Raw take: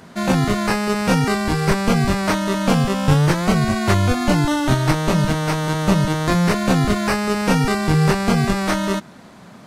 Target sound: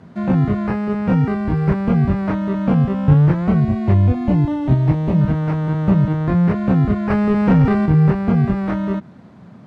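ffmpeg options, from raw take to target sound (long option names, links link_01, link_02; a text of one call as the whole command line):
ffmpeg -i in.wav -filter_complex "[0:a]highpass=89,aemphasis=mode=reproduction:type=riaa,acrossover=split=2900[link_01][link_02];[link_02]acompressor=threshold=-50dB:ratio=4:attack=1:release=60[link_03];[link_01][link_03]amix=inputs=2:normalize=0,asettb=1/sr,asplit=3[link_04][link_05][link_06];[link_04]atrim=end=3.604[link_07];[link_05]atrim=start=3.6:end=5.21,asetpts=PTS-STARTPTS,afade=type=in:duration=0.004:curve=qsin,afade=type=out:start_time=1.606:duration=0.004:curve=qsin,equalizer=frequency=1400:width_type=o:width=0.53:gain=-10.5[link_08];[link_06]atrim=start=5.206[link_09];[link_07][link_08]acrossfade=duration=0.004:curve1=hsin:curve2=qsin[link_10];[link_10][link_09]acrossfade=duration=0.004:curve1=qsin:curve2=hsin,asettb=1/sr,asplit=3[link_11][link_12][link_13];[link_11]atrim=end=7.104[link_14];[link_12]atrim=start=7.1:end=7.86,asetpts=PTS-STARTPTS,afade=type=in:duration=0.004:curve=qsin,afade=type=out:start_time=0.756:duration=0.004:curve=qsin,acontrast=51[link_15];[link_13]atrim=start=7.856[link_16];[link_14][link_15]acrossfade=duration=0.004:curve1=hsin:curve2=qsin[link_17];[link_17][link_16]acrossfade=duration=0.004:curve1=qsin:curve2=hsin,volume=-6dB" out.wav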